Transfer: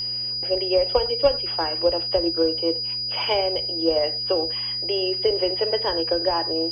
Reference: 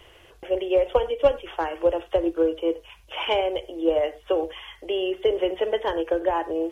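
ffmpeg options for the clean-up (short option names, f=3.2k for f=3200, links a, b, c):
-af "bandreject=f=121.9:t=h:w=4,bandreject=f=243.8:t=h:w=4,bandreject=f=365.7:t=h:w=4,bandreject=f=487.6:t=h:w=4,bandreject=f=609.5:t=h:w=4,bandreject=f=4.9k:w=30"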